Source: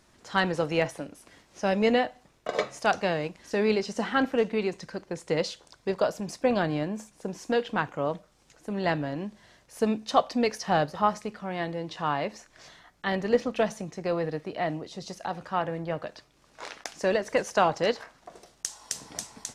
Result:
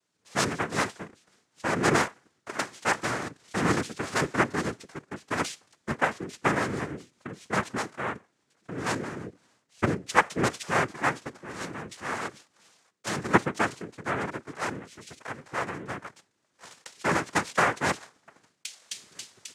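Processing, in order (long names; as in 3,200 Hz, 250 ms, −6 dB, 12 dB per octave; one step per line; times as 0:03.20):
cochlear-implant simulation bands 3
multiband upward and downward expander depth 40%
level −2 dB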